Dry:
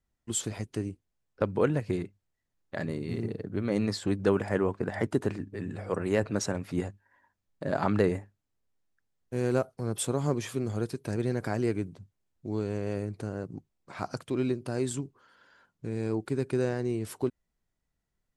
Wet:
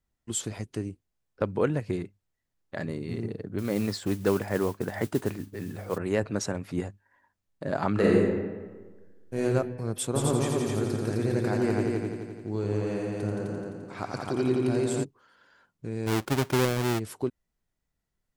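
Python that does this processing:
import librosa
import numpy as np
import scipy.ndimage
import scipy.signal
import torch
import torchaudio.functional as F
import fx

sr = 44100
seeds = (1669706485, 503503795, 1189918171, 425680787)

y = fx.mod_noise(x, sr, seeds[0], snr_db=20, at=(3.58, 5.98))
y = fx.reverb_throw(y, sr, start_s=7.92, length_s=1.5, rt60_s=1.4, drr_db=-5.0)
y = fx.echo_heads(y, sr, ms=86, heads='all three', feedback_pct=51, wet_db=-6, at=(10.14, 15.03), fade=0.02)
y = fx.halfwave_hold(y, sr, at=(16.06, 16.98), fade=0.02)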